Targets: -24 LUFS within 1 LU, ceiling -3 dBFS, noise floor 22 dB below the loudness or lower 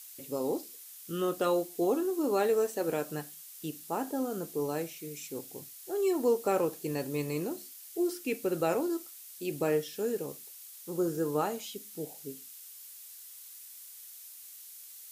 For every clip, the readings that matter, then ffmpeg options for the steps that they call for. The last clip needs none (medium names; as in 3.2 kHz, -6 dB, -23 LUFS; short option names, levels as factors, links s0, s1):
noise floor -49 dBFS; noise floor target -55 dBFS; loudness -32.5 LUFS; peak level -15.0 dBFS; loudness target -24.0 LUFS
-> -af "afftdn=nr=6:nf=-49"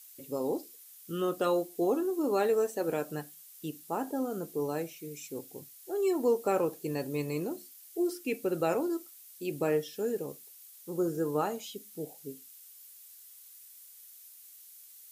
noise floor -53 dBFS; noise floor target -55 dBFS
-> -af "afftdn=nr=6:nf=-53"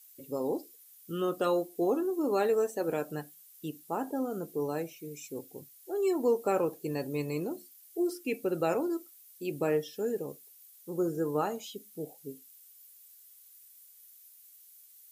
noise floor -57 dBFS; loudness -33.0 LUFS; peak level -15.5 dBFS; loudness target -24.0 LUFS
-> -af "volume=2.82"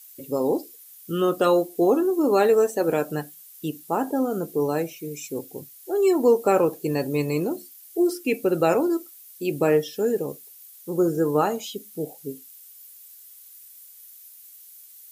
loudness -24.0 LUFS; peak level -6.5 dBFS; noise floor -48 dBFS